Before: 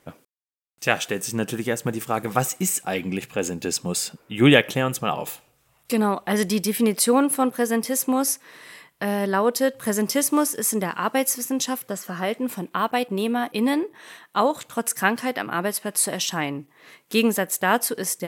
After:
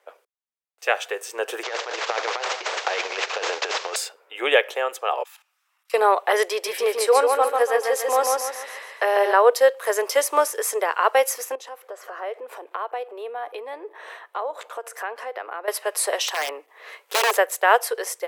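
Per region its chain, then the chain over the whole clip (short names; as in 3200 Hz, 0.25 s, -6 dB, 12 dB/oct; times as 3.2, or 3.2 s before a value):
1.63–3.96 CVSD 32 kbps + negative-ratio compressor -29 dBFS, ratio -0.5 + spectral compressor 2:1
5.23–5.94 HPF 1100 Hz 24 dB/oct + bell 5500 Hz +4.5 dB 0.23 oct + level quantiser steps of 15 dB
6.48–9.33 high shelf 11000 Hz -6 dB + feedback echo 0.143 s, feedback 41%, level -3.5 dB
11.55–15.68 high shelf 2000 Hz -10.5 dB + compressor 4:1, threshold -36 dBFS
16.28–17.37 HPF 210 Hz + wrapped overs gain 18.5 dB
whole clip: AGC gain up to 10.5 dB; steep high-pass 430 Hz 48 dB/oct; high shelf 3800 Hz -11.5 dB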